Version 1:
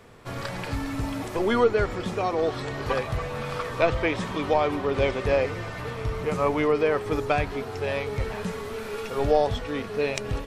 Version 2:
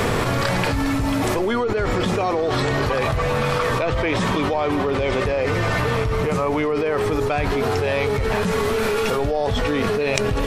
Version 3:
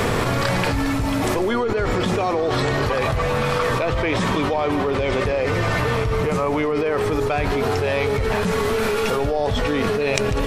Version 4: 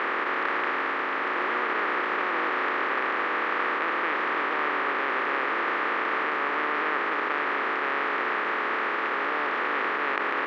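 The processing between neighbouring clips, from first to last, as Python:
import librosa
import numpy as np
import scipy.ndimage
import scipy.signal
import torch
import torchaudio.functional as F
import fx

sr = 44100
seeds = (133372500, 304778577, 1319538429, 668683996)

y1 = fx.env_flatten(x, sr, amount_pct=100)
y1 = y1 * librosa.db_to_amplitude(-5.0)
y2 = y1 + 10.0 ** (-16.0 / 20.0) * np.pad(y1, (int(147 * sr / 1000.0), 0))[:len(y1)]
y3 = fx.spec_flatten(y2, sr, power=0.13)
y3 = fx.cabinet(y3, sr, low_hz=300.0, low_slope=24, high_hz=2100.0, hz=(350.0, 670.0, 1200.0, 1800.0), db=(3, -5, 6, 4))
y3 = y3 * librosa.db_to_amplitude(-1.5)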